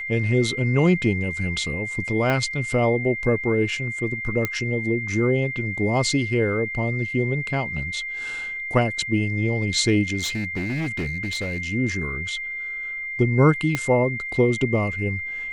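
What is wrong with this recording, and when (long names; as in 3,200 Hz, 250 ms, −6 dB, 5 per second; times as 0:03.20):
whistle 2,100 Hz −28 dBFS
0:02.30: click −11 dBFS
0:04.45: click −9 dBFS
0:10.18–0:11.60: clipping −22.5 dBFS
0:13.75: click −9 dBFS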